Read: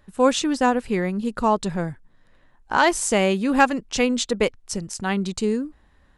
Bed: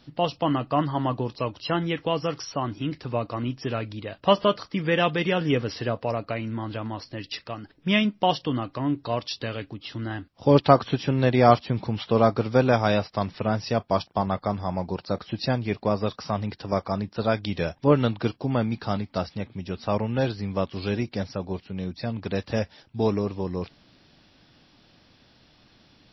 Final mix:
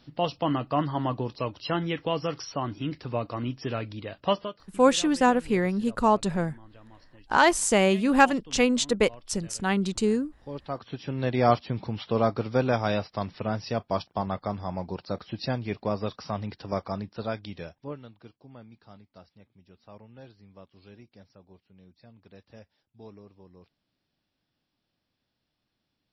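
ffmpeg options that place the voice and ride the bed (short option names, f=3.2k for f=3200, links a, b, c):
-filter_complex "[0:a]adelay=4600,volume=-1.5dB[a];[1:a]volume=13.5dB,afade=t=out:st=4.19:d=0.34:silence=0.125893,afade=t=in:st=10.66:d=0.8:silence=0.158489,afade=t=out:st=16.86:d=1.15:silence=0.112202[b];[a][b]amix=inputs=2:normalize=0"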